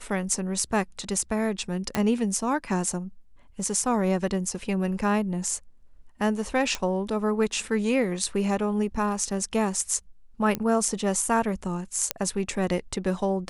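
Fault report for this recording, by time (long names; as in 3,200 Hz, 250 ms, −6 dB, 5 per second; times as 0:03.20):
0:01.95: click −10 dBFS
0:06.75: click −13 dBFS
0:10.55: click −12 dBFS
0:12.11: click −5 dBFS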